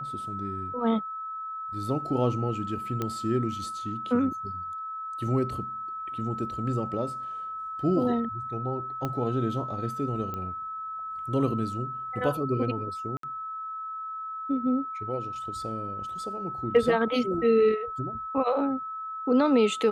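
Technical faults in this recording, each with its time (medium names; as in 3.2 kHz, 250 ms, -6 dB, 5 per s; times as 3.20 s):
whine 1.3 kHz -33 dBFS
3.02 s: pop -16 dBFS
9.05 s: pop -17 dBFS
10.34 s: pop -22 dBFS
13.17–13.23 s: dropout 63 ms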